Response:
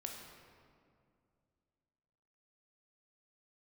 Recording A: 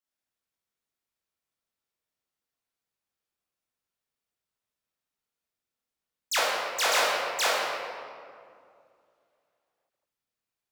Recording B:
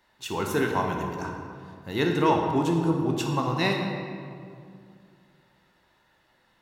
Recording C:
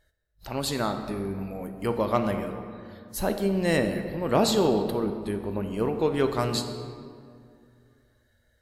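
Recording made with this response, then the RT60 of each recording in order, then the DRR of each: B; 2.3, 2.3, 2.3 seconds; −6.5, 1.0, 6.5 decibels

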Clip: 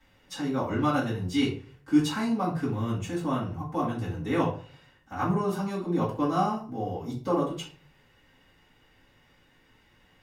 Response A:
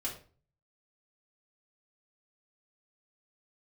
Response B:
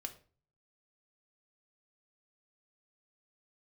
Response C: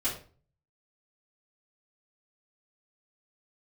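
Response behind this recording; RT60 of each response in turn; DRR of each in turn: C; 0.40, 0.40, 0.40 seconds; −4.0, 5.5, −10.0 decibels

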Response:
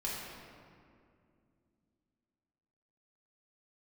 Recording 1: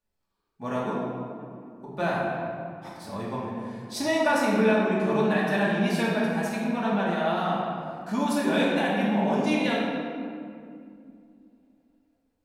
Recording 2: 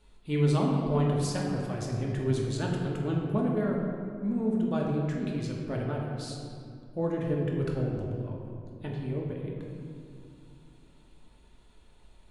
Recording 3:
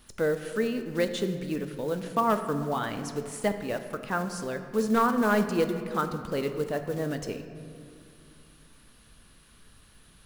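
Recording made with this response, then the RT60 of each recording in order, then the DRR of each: 1; 2.4, 2.4, 2.5 seconds; −6.5, −2.5, 7.0 decibels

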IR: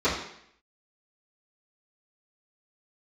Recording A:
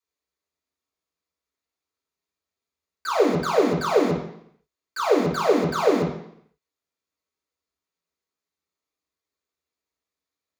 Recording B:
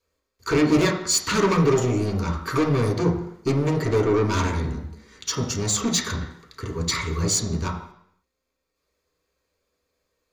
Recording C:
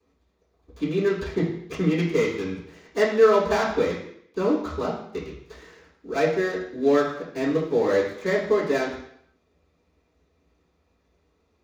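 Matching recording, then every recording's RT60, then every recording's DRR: C; 0.70, 0.70, 0.70 seconds; −8.5, −1.5, −16.0 decibels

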